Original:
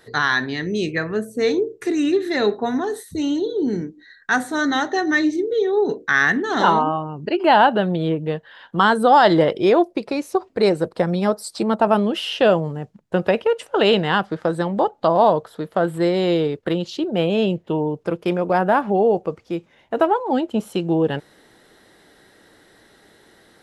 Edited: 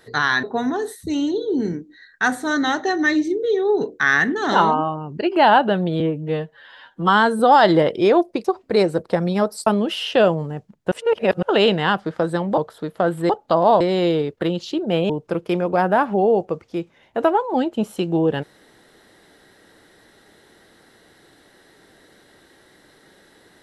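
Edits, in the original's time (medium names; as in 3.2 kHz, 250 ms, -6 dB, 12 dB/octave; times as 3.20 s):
0.43–2.51 s: delete
8.08–9.01 s: stretch 1.5×
10.06–10.31 s: delete
11.53–11.92 s: delete
13.17–13.68 s: reverse
14.83–15.34 s: move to 16.06 s
17.35–17.86 s: delete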